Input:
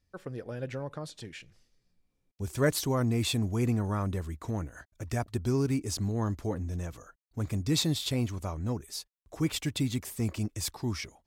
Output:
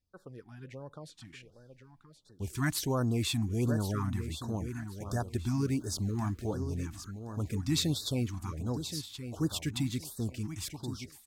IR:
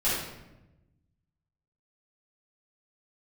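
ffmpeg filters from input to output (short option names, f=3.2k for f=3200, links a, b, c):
-filter_complex "[0:a]dynaudnorm=f=330:g=9:m=7dB,asettb=1/sr,asplit=3[a][b][c];[a]atrim=end=5.354[d];[b]atrim=start=5.35:end=6.52,asetpts=PTS-STARTPTS,afade=t=in:d=0.004:c=qsin,afade=t=out:st=1.166:d=0.004:c=qsin,aeval=exprs='val(0)*gte(abs(val(0)),0.00531)':c=same[e];[c]atrim=start=6.516[f];[d][e]acrossfade=d=0.004:c1=hsin:c2=qsin[g];[g][f]acrossfade=d=0.004:c1=qsin:c2=hsin,asplit=2[h][i];[i]aecho=0:1:1074|2148|3222:0.316|0.0759|0.0182[j];[h][j]amix=inputs=2:normalize=0,afftfilt=real='re*(1-between(b*sr/1024,450*pow(2600/450,0.5+0.5*sin(2*PI*1.4*pts/sr))/1.41,450*pow(2600/450,0.5+0.5*sin(2*PI*1.4*pts/sr))*1.41))':imag='im*(1-between(b*sr/1024,450*pow(2600/450,0.5+0.5*sin(2*PI*1.4*pts/sr))/1.41,450*pow(2600/450,0.5+0.5*sin(2*PI*1.4*pts/sr))*1.41))':win_size=1024:overlap=0.75,volume=-9dB"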